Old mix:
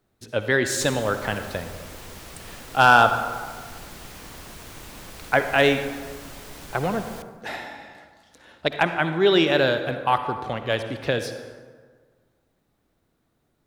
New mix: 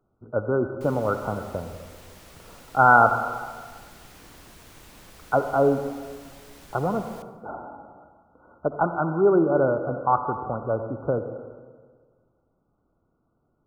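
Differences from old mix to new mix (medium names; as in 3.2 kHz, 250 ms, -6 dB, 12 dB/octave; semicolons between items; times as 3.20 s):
speech: add brick-wall FIR low-pass 1.5 kHz; background -7.5 dB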